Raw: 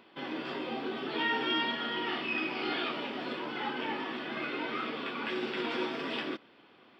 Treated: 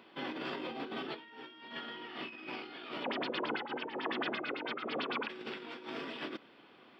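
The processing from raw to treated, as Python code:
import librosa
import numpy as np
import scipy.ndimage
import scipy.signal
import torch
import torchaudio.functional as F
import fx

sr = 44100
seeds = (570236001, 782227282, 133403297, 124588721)

y = scipy.signal.sosfilt(scipy.signal.butter(2, 88.0, 'highpass', fs=sr, output='sos'), x)
y = fx.over_compress(y, sr, threshold_db=-38.0, ratio=-0.5)
y = fx.filter_lfo_lowpass(y, sr, shape='sine', hz=9.0, low_hz=450.0, high_hz=5200.0, q=3.9, at=(3.03, 5.28), fade=0.02)
y = F.gain(torch.from_numpy(y), -3.5).numpy()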